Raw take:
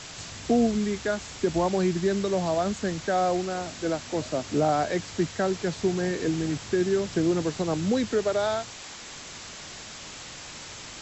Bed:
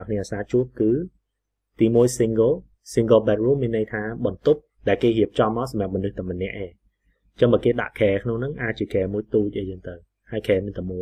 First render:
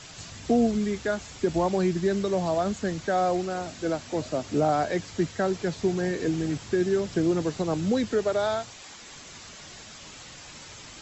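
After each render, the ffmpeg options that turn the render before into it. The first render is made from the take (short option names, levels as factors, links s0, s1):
-af "afftdn=nr=6:nf=-42"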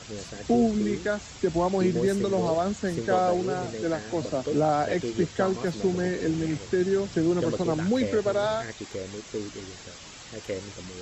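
-filter_complex "[1:a]volume=0.224[s0];[0:a][s0]amix=inputs=2:normalize=0"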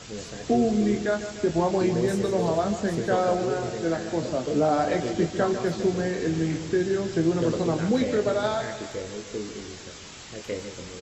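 -filter_complex "[0:a]asplit=2[s0][s1];[s1]adelay=24,volume=0.447[s2];[s0][s2]amix=inputs=2:normalize=0,aecho=1:1:149|298|447|596|745|894:0.282|0.161|0.0916|0.0522|0.0298|0.017"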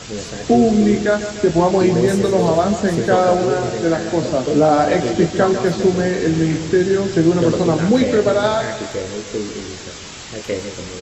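-af "volume=2.82"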